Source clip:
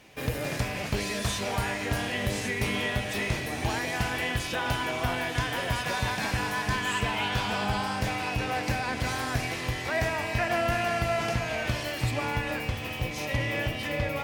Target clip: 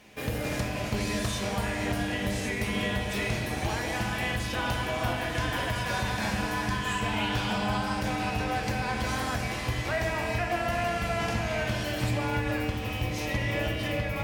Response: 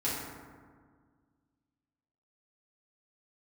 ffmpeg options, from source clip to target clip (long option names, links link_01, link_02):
-filter_complex "[0:a]asplit=2[link_01][link_02];[1:a]atrim=start_sample=2205,afade=type=out:start_time=0.42:duration=0.01,atrim=end_sample=18963,asetrate=32634,aresample=44100[link_03];[link_02][link_03]afir=irnorm=-1:irlink=0,volume=-9.5dB[link_04];[link_01][link_04]amix=inputs=2:normalize=0,alimiter=limit=-15.5dB:level=0:latency=1:release=327,volume=-3dB"